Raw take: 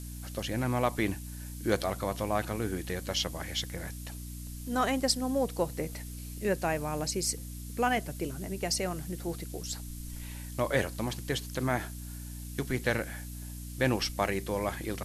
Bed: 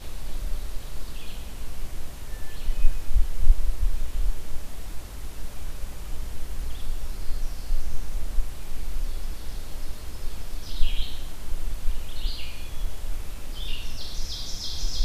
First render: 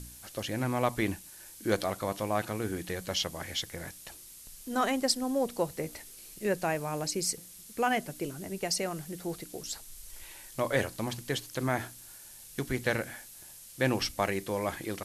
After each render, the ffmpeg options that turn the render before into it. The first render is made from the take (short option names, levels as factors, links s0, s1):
-af "bandreject=f=60:t=h:w=4,bandreject=f=120:t=h:w=4,bandreject=f=180:t=h:w=4,bandreject=f=240:t=h:w=4,bandreject=f=300:t=h:w=4"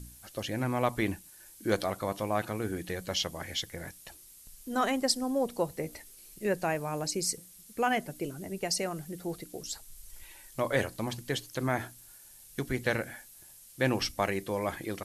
-af "afftdn=nr=6:nf=-50"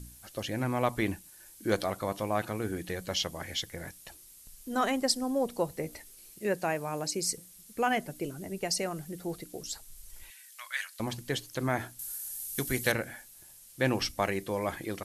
-filter_complex "[0:a]asettb=1/sr,asplit=3[s0][s1][s2];[s0]atrim=end=6.304[s3];[s1]atrim=start=6.3:end=7.25,asetpts=PTS-STARTPTS,afade=t=in:d=0.004:c=qsin,afade=t=out:st=0.946:d=0.004:c=qsin,highpass=f=130:p=1[s4];[s2]atrim=start=7.246[s5];[s3][s4]acrossfade=d=0.004:c1=hsin:c2=qsin[s6];[s6][s5]acrossfade=d=0.004:c1=qsin:c2=hsin,asettb=1/sr,asplit=3[s7][s8][s9];[s7]atrim=end=10.304[s10];[s8]atrim=start=10.3:end=11,asetpts=PTS-STARTPTS,afade=t=in:d=0.004:c=qsin,afade=t=out:st=0.696:d=0.004:c=qsin,highpass=f=1500:w=0.5412,highpass=f=1500:w=1.3066[s11];[s9]atrim=start=10.996[s12];[s10][s11]acrossfade=d=0.004:c1=hsin:c2=qsin[s13];[s13][s12]acrossfade=d=0.004:c1=qsin:c2=hsin,asettb=1/sr,asplit=3[s14][s15][s16];[s14]atrim=end=11.994[s17];[s15]atrim=start=11.99:end=12.92,asetpts=PTS-STARTPTS,afade=t=in:d=0.004:c=qsin,afade=t=out:st=0.926:d=0.004:c=qsin,aemphasis=mode=production:type=75kf[s18];[s16]atrim=start=12.916[s19];[s17][s18]acrossfade=d=0.004:c1=hsin:c2=qsin[s20];[s20][s19]acrossfade=d=0.004:c1=qsin:c2=hsin"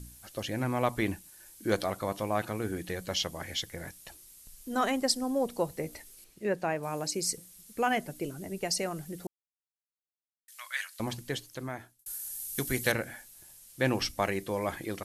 -filter_complex "[0:a]asettb=1/sr,asplit=3[s0][s1][s2];[s0]atrim=end=6.244[s3];[s1]atrim=start=6.24:end=6.83,asetpts=PTS-STARTPTS,afade=t=in:d=0.004:c=qsin,afade=t=out:st=0.586:d=0.004:c=qsin,lowpass=f=2800:p=1[s4];[s2]atrim=start=6.826[s5];[s3][s4]acrossfade=d=0.004:c1=hsin:c2=qsin[s6];[s6][s5]acrossfade=d=0.004:c1=qsin:c2=hsin,asplit=4[s7][s8][s9][s10];[s7]atrim=end=9.27,asetpts=PTS-STARTPTS,afade=t=out:st=9.266:d=0.004:c=hsin[s11];[s8]atrim=start=9.27:end=10.48,asetpts=PTS-STARTPTS,volume=0[s12];[s9]atrim=start=10.48:end=12.06,asetpts=PTS-STARTPTS,afade=t=in:d=0.004:c=hsin,afade=t=out:st=0.64:d=0.94[s13];[s10]atrim=start=12.06,asetpts=PTS-STARTPTS,afade=t=in:d=0.004:c=hsin[s14];[s11][s12][s13][s14]concat=n=4:v=0:a=1"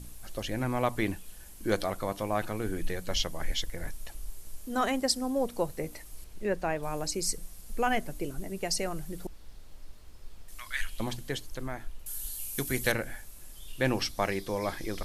-filter_complex "[1:a]volume=0.158[s0];[0:a][s0]amix=inputs=2:normalize=0"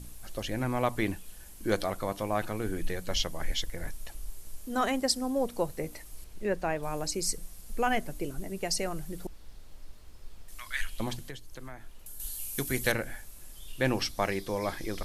-filter_complex "[0:a]asettb=1/sr,asplit=3[s0][s1][s2];[s0]atrim=end=11.194[s3];[s1]atrim=start=11.19:end=12.2,asetpts=PTS-STARTPTS,afade=t=in:d=0.004:c=qsin,afade=t=out:st=1.006:d=0.004:c=qsin,acrossover=split=110|910[s4][s5][s6];[s4]acompressor=threshold=0.00891:ratio=4[s7];[s5]acompressor=threshold=0.00501:ratio=4[s8];[s6]acompressor=threshold=0.00447:ratio=4[s9];[s7][s8][s9]amix=inputs=3:normalize=0[s10];[s2]atrim=start=12.196[s11];[s3][s10]acrossfade=d=0.004:c1=hsin:c2=qsin[s12];[s12][s11]acrossfade=d=0.004:c1=qsin:c2=hsin"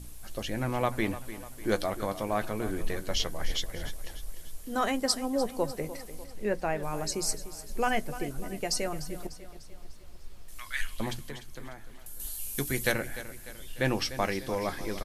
-filter_complex "[0:a]asplit=2[s0][s1];[s1]adelay=14,volume=0.237[s2];[s0][s2]amix=inputs=2:normalize=0,aecho=1:1:298|596|894|1192|1490:0.2|0.102|0.0519|0.0265|0.0135"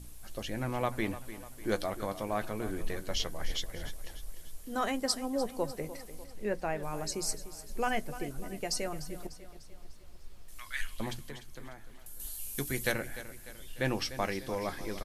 -af "volume=0.668"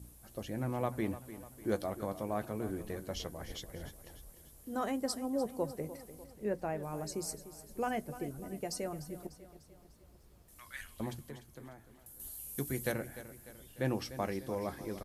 -af "highpass=60,equalizer=f=3300:w=0.35:g=-10"